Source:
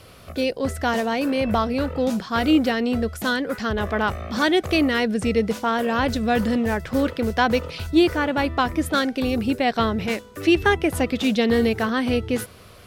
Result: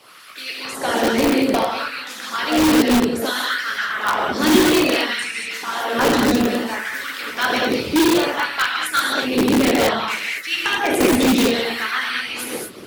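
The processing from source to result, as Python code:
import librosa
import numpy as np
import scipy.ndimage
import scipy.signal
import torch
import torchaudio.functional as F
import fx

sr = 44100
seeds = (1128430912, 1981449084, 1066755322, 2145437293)

p1 = fx.low_shelf_res(x, sr, hz=380.0, db=12.5, q=1.5)
p2 = fx.rev_gated(p1, sr, seeds[0], gate_ms=270, shape='flat', drr_db=-6.5)
p3 = fx.filter_lfo_highpass(p2, sr, shape='sine', hz=0.6, low_hz=340.0, high_hz=1700.0, q=1.7)
p4 = fx.hpss(p3, sr, part='harmonic', gain_db=-16)
p5 = (np.mod(10.0 ** (13.5 / 20.0) * p4 + 1.0, 2.0) - 1.0) / 10.0 ** (13.5 / 20.0)
y = p4 + (p5 * librosa.db_to_amplitude(-3.0))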